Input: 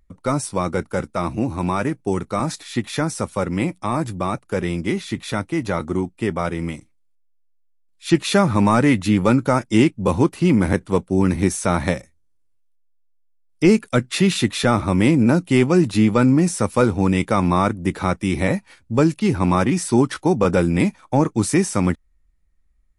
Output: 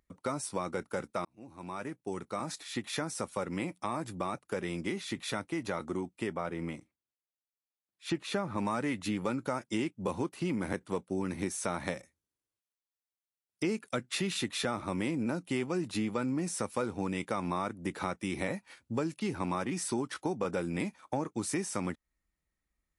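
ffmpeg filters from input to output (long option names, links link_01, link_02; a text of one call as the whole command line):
ffmpeg -i in.wav -filter_complex "[0:a]asettb=1/sr,asplit=3[link_01][link_02][link_03];[link_01]atrim=end=6.364[link_04];[link_02]atrim=start=6.36:end=8.58,asetpts=PTS-STARTPTS,afade=type=in:duration=0.004:curve=qsin,afade=type=out:start_time=2.216:duration=0.004:curve=qsin,highshelf=frequency=3000:gain=-9.5[link_05];[link_03]atrim=start=8.576[link_06];[link_04][link_05]acrossfade=duration=0.004:curve1=hsin:curve2=qsin[link_07];[link_07][link_06]acrossfade=duration=0.004:curve1=qsin:curve2=hsin,asplit=2[link_08][link_09];[link_08]atrim=end=1.25,asetpts=PTS-STARTPTS,afade=type=out:start_time=1.246:duration=0.004:curve=hsin[link_10];[link_09]atrim=start=1.25,asetpts=PTS-STARTPTS,afade=type=in:duration=1.85[link_11];[link_10][link_11]concat=n=2:v=0:a=1,highpass=frequency=260:poles=1,acompressor=threshold=-27dB:ratio=3,volume=-5dB" out.wav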